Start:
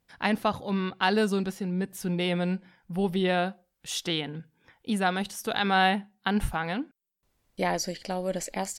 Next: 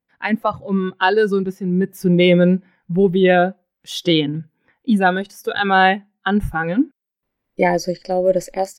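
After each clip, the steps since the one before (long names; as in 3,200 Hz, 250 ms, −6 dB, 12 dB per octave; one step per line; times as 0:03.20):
noise reduction from a noise print of the clip's start 15 dB
octave-band graphic EQ 125/250/500/1,000/2,000/8,000 Hz +3/+9/+6/+4/+8/−10 dB
automatic gain control gain up to 11.5 dB
level −1 dB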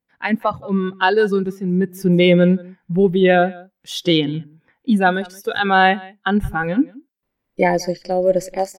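single-tap delay 175 ms −23 dB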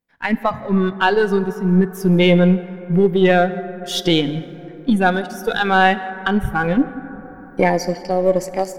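gain on one half-wave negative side −3 dB
camcorder AGC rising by 8.2 dB per second
dense smooth reverb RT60 4.4 s, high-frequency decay 0.3×, DRR 13.5 dB
level +1 dB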